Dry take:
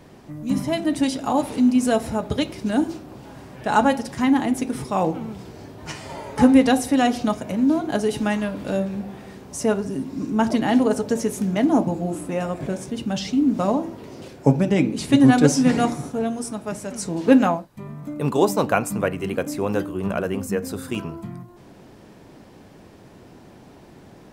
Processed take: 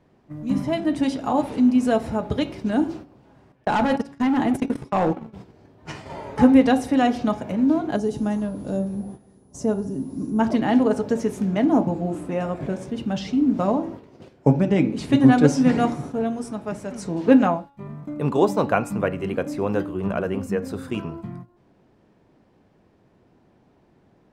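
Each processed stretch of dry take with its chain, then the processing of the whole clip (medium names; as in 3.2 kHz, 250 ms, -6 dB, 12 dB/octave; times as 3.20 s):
3.52–5.33 s: gate -25 dBFS, range -50 dB + overload inside the chain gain 17 dB + level flattener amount 70%
7.95–10.39 s: FFT filter 220 Hz 0 dB, 810 Hz -5 dB, 2.4 kHz -14 dB, 6.9 kHz +3 dB, 9.9 kHz -5 dB + whistle 10 kHz -46 dBFS
whole clip: gate -36 dBFS, range -12 dB; low-pass 2.5 kHz 6 dB/octave; de-hum 280.5 Hz, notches 21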